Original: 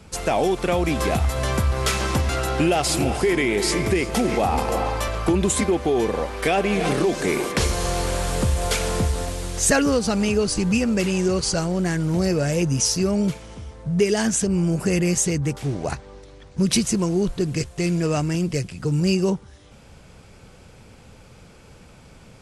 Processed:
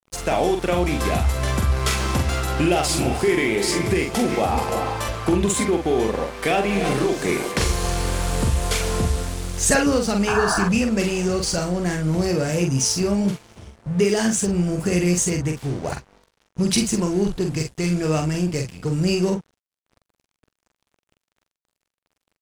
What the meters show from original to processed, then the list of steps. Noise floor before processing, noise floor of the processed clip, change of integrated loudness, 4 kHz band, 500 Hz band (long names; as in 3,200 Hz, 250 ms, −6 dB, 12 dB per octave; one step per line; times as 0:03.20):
−47 dBFS, below −85 dBFS, +0.5 dB, +0.5 dB, 0.0 dB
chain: dead-zone distortion −38.5 dBFS
sound drawn into the spectrogram noise, 0:10.27–0:10.65, 620–1,800 Hz −24 dBFS
double-tracking delay 45 ms −5 dB